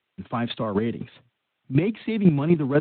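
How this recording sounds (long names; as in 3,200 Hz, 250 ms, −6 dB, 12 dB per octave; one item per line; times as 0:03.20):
chopped level 4 Hz, depth 65%, duty 15%
a quantiser's noise floor 12 bits, dither triangular
Speex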